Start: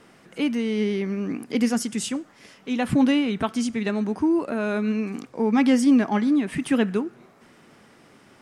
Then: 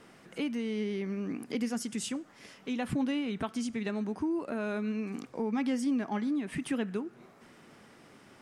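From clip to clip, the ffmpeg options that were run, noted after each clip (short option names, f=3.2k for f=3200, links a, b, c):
-af "acompressor=threshold=-32dB:ratio=2,volume=-3dB"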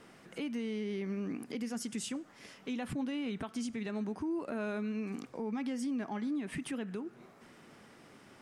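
-af "alimiter=level_in=4.5dB:limit=-24dB:level=0:latency=1:release=122,volume=-4.5dB,volume=-1dB"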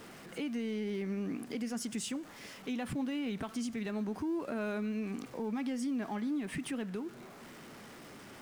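-af "aeval=exprs='val(0)+0.5*0.00316*sgn(val(0))':c=same"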